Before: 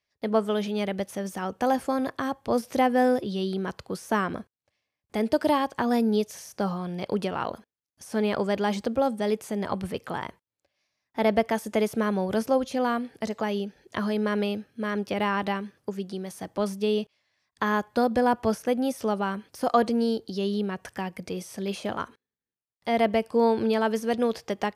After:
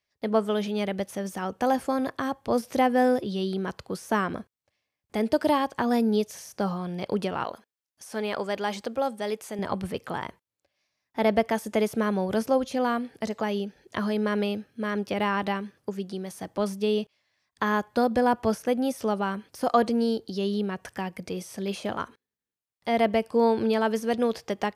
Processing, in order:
0:07.44–0:09.59: low-shelf EQ 310 Hz −11.5 dB

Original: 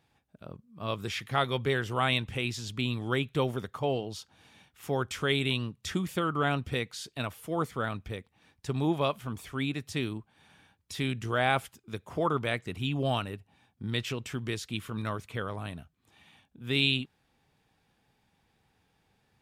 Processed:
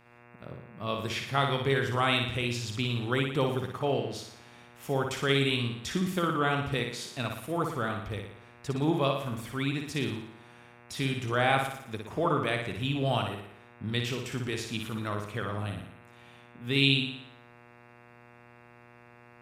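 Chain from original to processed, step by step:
hum with harmonics 120 Hz, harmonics 23, −61 dBFS −2 dB per octave
flutter between parallel walls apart 10 metres, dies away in 0.67 s

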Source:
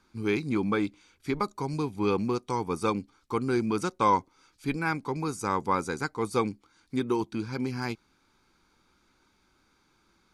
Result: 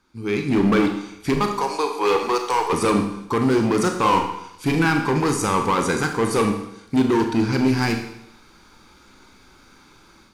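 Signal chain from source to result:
0:01.47–0:02.73: high-pass filter 460 Hz 24 dB per octave
automatic gain control gain up to 15 dB
brickwall limiter −7.5 dBFS, peak gain reduction 6 dB
hard clipping −15.5 dBFS, distortion −11 dB
0:03.92–0:04.85: double-tracking delay 37 ms −6 dB
four-comb reverb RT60 0.78 s, combs from 27 ms, DRR 4 dB

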